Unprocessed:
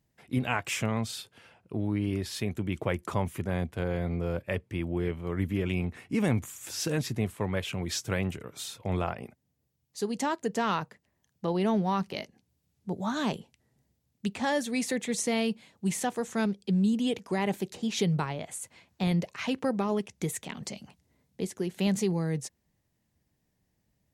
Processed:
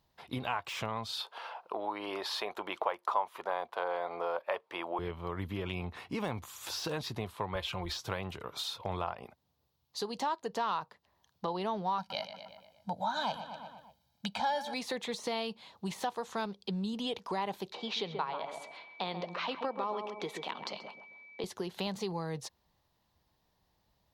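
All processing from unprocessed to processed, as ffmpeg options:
ffmpeg -i in.wav -filter_complex "[0:a]asettb=1/sr,asplit=3[link_01][link_02][link_03];[link_01]atrim=end=1.204[link_04];[link_02]atrim=start=1.2:end=4.99,asetpts=PTS-STARTPTS,afade=type=in:duration=0.004:curve=qsin,afade=type=out:start_time=3.786:duration=0.004:curve=qsin,highpass=490,equalizer=frequency=820:width_type=o:width=2.5:gain=11[link_05];[link_03]atrim=start=4.986[link_06];[link_04][link_05]acrossfade=duration=0.004:curve1=hsin:curve2=qsin[link_07];[link_07][link_06]acrossfade=duration=0.004:curve1=qsin:curve2=hsin,asettb=1/sr,asplit=3[link_08][link_09][link_10];[link_08]atrim=end=7.554[link_11];[link_09]atrim=start=7.55:end=8,asetpts=PTS-STARTPTS,afade=type=in:duration=0.004:curve=qsin,afade=type=out:start_time=0.446:duration=0.004:curve=qsin,lowshelf=frequency=100:width_type=q:width=1.5:gain=13.5,aecho=1:1:5.7:0.61,atrim=end_sample=19845[link_12];[link_10]atrim=start=7.996[link_13];[link_11][link_12]acrossfade=duration=0.004:curve1=hsin:curve2=qsin[link_14];[link_14][link_13]acrossfade=duration=0.004:curve1=qsin:curve2=hsin,asettb=1/sr,asplit=3[link_15][link_16][link_17];[link_15]atrim=end=11.984[link_18];[link_16]atrim=start=11.98:end=14.74,asetpts=PTS-STARTPTS,afade=type=in:duration=0.004:curve=qsin,afade=type=out:start_time=2.756:duration=0.004:curve=qsin,highpass=frequency=150:poles=1,aecho=1:1:1.3:0.99,atrim=end_sample=121716,asplit=2[link_19][link_20];[link_20]adelay=119,lowpass=frequency=4900:poles=1,volume=-13.5dB,asplit=2[link_21][link_22];[link_22]adelay=119,lowpass=frequency=4900:poles=1,volume=0.54,asplit=2[link_23][link_24];[link_24]adelay=119,lowpass=frequency=4900:poles=1,volume=0.54,asplit=2[link_25][link_26];[link_26]adelay=119,lowpass=frequency=4900:poles=1,volume=0.54,asplit=2[link_27][link_28];[link_28]adelay=119,lowpass=frequency=4900:poles=1,volume=0.54[link_29];[link_19][link_21][link_23][link_25][link_27][link_29]amix=inputs=6:normalize=0,atrim=end_sample=121716[link_30];[link_17]atrim=start=14.736[link_31];[link_18][link_30]acrossfade=duration=0.004:curve1=hsin:curve2=qsin[link_32];[link_32][link_31]acrossfade=duration=0.004:curve1=qsin:curve2=hsin,asettb=1/sr,asplit=3[link_33][link_34][link_35];[link_33]atrim=end=17.724[link_36];[link_34]atrim=start=17.72:end=21.44,asetpts=PTS-STARTPTS,afade=type=in:duration=0.004:curve=qsin,afade=type=out:start_time=3.716:duration=0.004:curve=qsin,acrossover=split=220 4900:gain=0.0794 1 0.141[link_37][link_38][link_39];[link_37][link_38][link_39]amix=inputs=3:normalize=0,asplit=2[link_40][link_41];[link_41]adelay=132,lowpass=frequency=1200:poles=1,volume=-7dB,asplit=2[link_42][link_43];[link_43]adelay=132,lowpass=frequency=1200:poles=1,volume=0.34,asplit=2[link_44][link_45];[link_45]adelay=132,lowpass=frequency=1200:poles=1,volume=0.34,asplit=2[link_46][link_47];[link_47]adelay=132,lowpass=frequency=1200:poles=1,volume=0.34[link_48];[link_40][link_42][link_44][link_46][link_48]amix=inputs=5:normalize=0,atrim=end_sample=164052,aeval=exprs='val(0)+0.00224*sin(2*PI*2300*n/s)':channel_layout=same[link_49];[link_35]atrim=start=21.436[link_50];[link_36][link_49]acrossfade=duration=0.004:curve1=hsin:curve2=qsin[link_51];[link_51][link_50]acrossfade=duration=0.004:curve1=qsin:curve2=hsin,deesser=0.75,equalizer=frequency=125:width_type=o:width=1:gain=-5,equalizer=frequency=250:width_type=o:width=1:gain=-6,equalizer=frequency=1000:width_type=o:width=1:gain=11,equalizer=frequency=2000:width_type=o:width=1:gain=-5,equalizer=frequency=4000:width_type=o:width=1:gain=10,equalizer=frequency=8000:width_type=o:width=1:gain=-9,acompressor=threshold=-38dB:ratio=2.5,volume=2dB" out.wav

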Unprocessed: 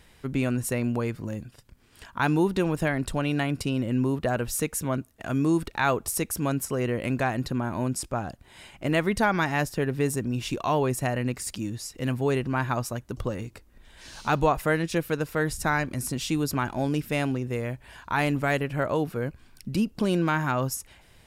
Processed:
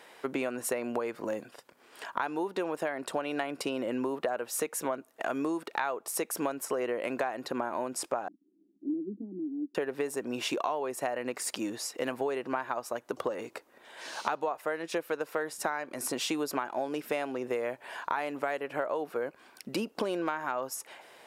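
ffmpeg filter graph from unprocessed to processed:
ffmpeg -i in.wav -filter_complex "[0:a]asettb=1/sr,asplit=3[link_01][link_02][link_03];[link_01]atrim=end=8.284[link_04];[link_02]atrim=start=8.28:end=9.75,asetpts=PTS-STARTPTS,afade=type=in:duration=0.004:curve=qsin,afade=type=out:start_time=1.466:duration=0.004:curve=qsin,asuperpass=centerf=240:order=8:qfactor=1.8,bandreject=frequency=240:width=7.2,aecho=1:1:2.7:0.41,atrim=end_sample=64827[link_05];[link_03]atrim=start=9.746[link_06];[link_04][link_05]acrossfade=duration=0.004:curve1=hsin:curve2=qsin[link_07];[link_07][link_06]acrossfade=duration=0.004:curve1=qsin:curve2=hsin,highpass=440,equalizer=frequency=600:width=0.35:gain=10.5,acompressor=threshold=-28dB:ratio=12" out.wav

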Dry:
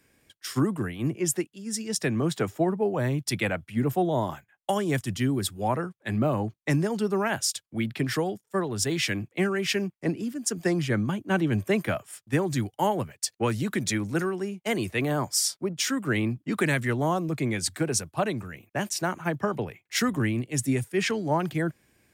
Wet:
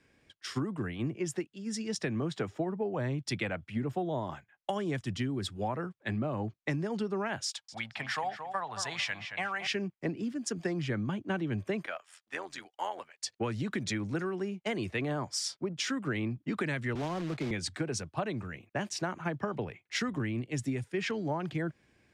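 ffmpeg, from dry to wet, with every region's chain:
ffmpeg -i in.wav -filter_complex "[0:a]asettb=1/sr,asplit=3[link_01][link_02][link_03];[link_01]atrim=end=7.464[link_04];[link_02]atrim=start=7.46:end=9.67,asetpts=PTS-STARTPTS,afade=type=in:duration=0.004:curve=qsin,afade=type=out:start_time=2.206:duration=0.004:curve=qsin,lowshelf=frequency=530:width_type=q:width=3:gain=-13.5,asplit=2[link_05][link_06];[link_06]adelay=224,lowpass=frequency=3000:poles=1,volume=-10dB,asplit=2[link_07][link_08];[link_08]adelay=224,lowpass=frequency=3000:poles=1,volume=0.28,asplit=2[link_09][link_10];[link_10]adelay=224,lowpass=frequency=3000:poles=1,volume=0.28[link_11];[link_05][link_07][link_09][link_11]amix=inputs=4:normalize=0,atrim=end_sample=97461[link_12];[link_03]atrim=start=9.666[link_13];[link_04][link_12]acrossfade=duration=0.004:curve1=hsin:curve2=qsin[link_14];[link_14][link_13]acrossfade=duration=0.004:curve1=qsin:curve2=hsin,asettb=1/sr,asplit=3[link_15][link_16][link_17];[link_15]atrim=end=11.864[link_18];[link_16]atrim=start=11.86:end=13.2,asetpts=PTS-STARTPTS,afade=type=in:duration=0.004:curve=qsin,afade=type=out:start_time=1.336:duration=0.004:curve=qsin,highpass=810,tremolo=f=86:d=0.71[link_19];[link_17]atrim=start=13.196[link_20];[link_18][link_19]acrossfade=duration=0.004:curve1=hsin:curve2=qsin[link_21];[link_21][link_20]acrossfade=duration=0.004:curve1=qsin:curve2=hsin,asettb=1/sr,asplit=3[link_22][link_23][link_24];[link_22]atrim=end=16.954[link_25];[link_23]atrim=start=16.95:end=17.51,asetpts=PTS-STARTPTS,afade=type=in:duration=0.004:curve=qsin,afade=type=out:start_time=0.556:duration=0.004:curve=qsin,acrossover=split=150|460|1200[link_26][link_27][link_28][link_29];[link_26]acompressor=threshold=-42dB:ratio=3[link_30];[link_27]acompressor=threshold=-33dB:ratio=3[link_31];[link_28]acompressor=threshold=-37dB:ratio=3[link_32];[link_29]acompressor=threshold=-43dB:ratio=3[link_33];[link_30][link_31][link_32][link_33]amix=inputs=4:normalize=0,acrusher=bits=2:mode=log:mix=0:aa=0.000001[link_34];[link_24]atrim=start=17.506[link_35];[link_25][link_34]acrossfade=duration=0.004:curve1=hsin:curve2=qsin[link_36];[link_36][link_35]acrossfade=duration=0.004:curve1=qsin:curve2=hsin,lowpass=5100,acompressor=threshold=-28dB:ratio=6,volume=-1.5dB" out.wav

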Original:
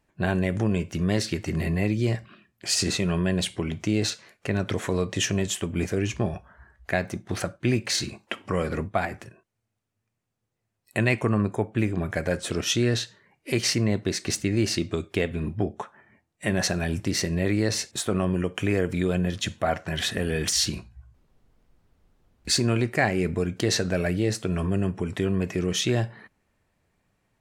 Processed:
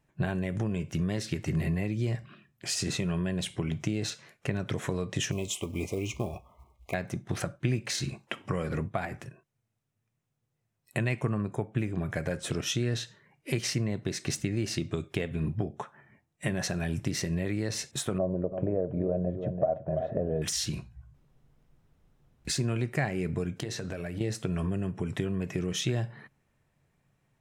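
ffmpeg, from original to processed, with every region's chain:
ffmpeg -i in.wav -filter_complex "[0:a]asettb=1/sr,asplit=3[link_01][link_02][link_03];[link_01]atrim=end=5.314[link_04];[link_02]atrim=start=5.31:end=6.94,asetpts=PTS-STARTPTS,afade=type=in:duration=0.004:curve=qsin,afade=type=out:start_time=1.626:duration=0.004:curve=qsin,equalizer=frequency=150:width_type=o:width=0.75:gain=-11.5,acrusher=bits=6:mode=log:mix=0:aa=0.000001,asuperstop=centerf=1600:order=20:qfactor=2[link_05];[link_03]atrim=start=6.936[link_06];[link_04][link_05]acrossfade=duration=0.004:curve1=hsin:curve2=qsin[link_07];[link_07][link_06]acrossfade=duration=0.004:curve1=qsin:curve2=hsin,asettb=1/sr,asplit=3[link_08][link_09][link_10];[link_08]atrim=end=18.184[link_11];[link_09]atrim=start=18.18:end=20.42,asetpts=PTS-STARTPTS,afade=type=in:duration=0.004:curve=qsin,afade=type=out:start_time=2.236:duration=0.004:curve=qsin,lowpass=frequency=610:width_type=q:width=6.7,aecho=1:1:334:0.266,atrim=end_sample=98784[link_12];[link_10]atrim=start=20.416[link_13];[link_11][link_12]acrossfade=duration=0.004:curve1=hsin:curve2=qsin[link_14];[link_14][link_13]acrossfade=duration=0.004:curve1=qsin:curve2=hsin,asettb=1/sr,asplit=3[link_15][link_16][link_17];[link_15]atrim=end=23.544[link_18];[link_16]atrim=start=23.54:end=24.21,asetpts=PTS-STARTPTS,afade=type=in:duration=0.004:curve=qsin,afade=type=out:start_time=0.666:duration=0.004:curve=qsin,bandreject=frequency=60:width_type=h:width=6,bandreject=frequency=120:width_type=h:width=6,bandreject=frequency=180:width_type=h:width=6,bandreject=frequency=240:width_type=h:width=6,bandreject=frequency=300:width_type=h:width=6,bandreject=frequency=360:width_type=h:width=6,acompressor=threshold=-29dB:ratio=10:attack=3.2:release=140:knee=1:detection=peak[link_19];[link_17]atrim=start=24.206[link_20];[link_18][link_19]acrossfade=duration=0.004:curve1=hsin:curve2=qsin[link_21];[link_21][link_20]acrossfade=duration=0.004:curve1=qsin:curve2=hsin,acompressor=threshold=-27dB:ratio=2.5,equalizer=frequency=140:width_type=o:width=0.32:gain=12,bandreject=frequency=4500:width=14,volume=-2.5dB" out.wav

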